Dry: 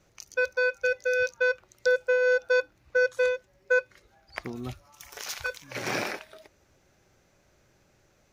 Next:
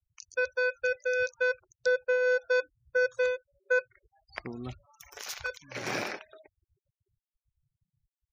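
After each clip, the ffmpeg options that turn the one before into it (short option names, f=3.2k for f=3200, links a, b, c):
-af "afftfilt=real='re*gte(hypot(re,im),0.00447)':imag='im*gte(hypot(re,im),0.00447)':win_size=1024:overlap=0.75,volume=-3dB"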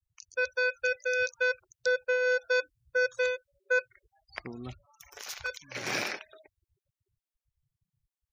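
-af "adynamicequalizer=threshold=0.00891:dfrequency=1600:dqfactor=0.7:tfrequency=1600:tqfactor=0.7:attack=5:release=100:ratio=0.375:range=3.5:mode=boostabove:tftype=highshelf,volume=-2dB"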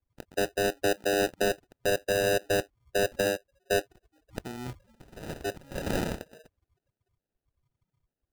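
-filter_complex "[0:a]asplit=2[a][b];[b]aeval=exprs='(mod(11.9*val(0)+1,2)-1)/11.9':c=same,volume=-7.5dB[c];[a][c]amix=inputs=2:normalize=0,acrusher=samples=40:mix=1:aa=0.000001"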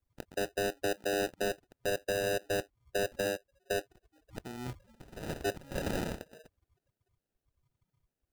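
-af "alimiter=level_in=1dB:limit=-24dB:level=0:latency=1:release=452,volume=-1dB"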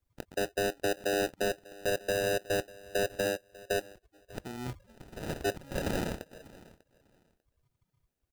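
-af "aecho=1:1:595|1190:0.0891|0.0169,volume=2dB"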